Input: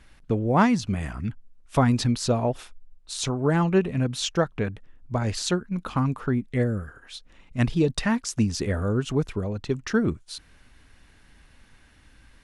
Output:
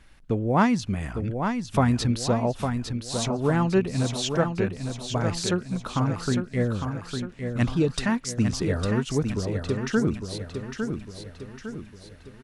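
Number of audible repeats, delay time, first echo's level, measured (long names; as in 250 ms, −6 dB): 5, 855 ms, −6.5 dB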